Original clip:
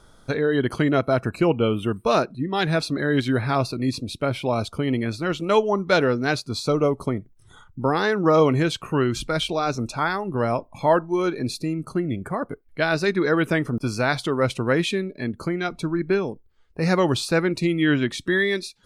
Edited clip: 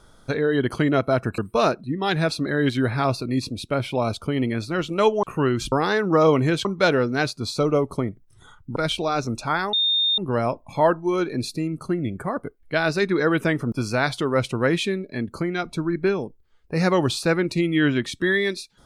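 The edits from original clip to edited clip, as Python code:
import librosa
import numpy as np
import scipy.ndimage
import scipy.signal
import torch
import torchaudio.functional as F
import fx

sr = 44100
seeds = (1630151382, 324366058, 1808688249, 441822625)

y = fx.edit(x, sr, fx.cut(start_s=1.38, length_s=0.51),
    fx.swap(start_s=5.74, length_s=2.11, other_s=8.78, other_length_s=0.49),
    fx.insert_tone(at_s=10.24, length_s=0.45, hz=3650.0, db=-17.5), tone=tone)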